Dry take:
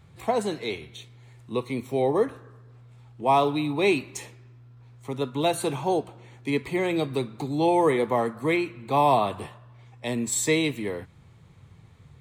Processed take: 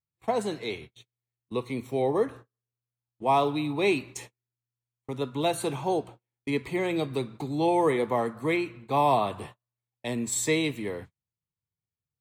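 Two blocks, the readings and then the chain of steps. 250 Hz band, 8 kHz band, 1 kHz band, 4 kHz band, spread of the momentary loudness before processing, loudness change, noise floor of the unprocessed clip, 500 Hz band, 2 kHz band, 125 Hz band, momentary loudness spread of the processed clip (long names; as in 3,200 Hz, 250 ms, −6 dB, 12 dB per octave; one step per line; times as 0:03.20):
−2.5 dB, −2.5 dB, −2.5 dB, −2.5 dB, 16 LU, −2.5 dB, −52 dBFS, −2.5 dB, −2.5 dB, −2.5 dB, 15 LU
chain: noise gate −40 dBFS, range −40 dB
level −2.5 dB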